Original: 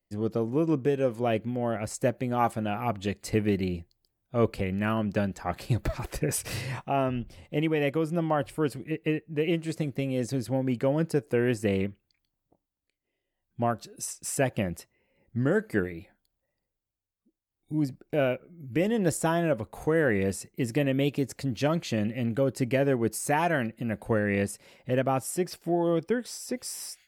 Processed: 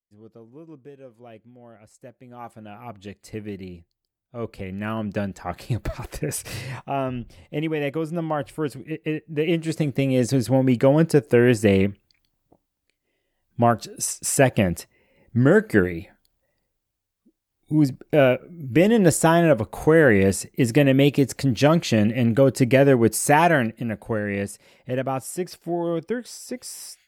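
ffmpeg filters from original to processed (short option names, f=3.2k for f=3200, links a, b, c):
-af "volume=9dB,afade=t=in:st=2.14:d=0.91:silence=0.298538,afade=t=in:st=4.38:d=0.69:silence=0.375837,afade=t=in:st=9.09:d=1.11:silence=0.398107,afade=t=out:st=23.44:d=0.58:silence=0.375837"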